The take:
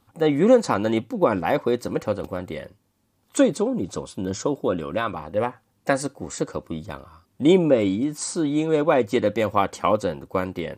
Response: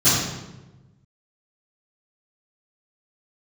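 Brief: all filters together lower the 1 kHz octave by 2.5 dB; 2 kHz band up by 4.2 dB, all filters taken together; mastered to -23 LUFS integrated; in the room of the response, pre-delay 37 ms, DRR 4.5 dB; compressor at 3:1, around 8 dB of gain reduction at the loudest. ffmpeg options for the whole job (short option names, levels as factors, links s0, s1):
-filter_complex "[0:a]equalizer=f=1000:t=o:g=-5,equalizer=f=2000:t=o:g=7,acompressor=threshold=0.0794:ratio=3,asplit=2[s0][s1];[1:a]atrim=start_sample=2205,adelay=37[s2];[s1][s2]afir=irnorm=-1:irlink=0,volume=0.0631[s3];[s0][s3]amix=inputs=2:normalize=0,volume=1.19"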